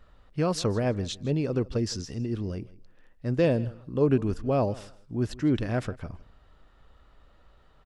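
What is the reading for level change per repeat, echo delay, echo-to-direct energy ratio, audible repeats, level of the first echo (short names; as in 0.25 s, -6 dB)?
-13.5 dB, 0.161 s, -20.5 dB, 2, -20.5 dB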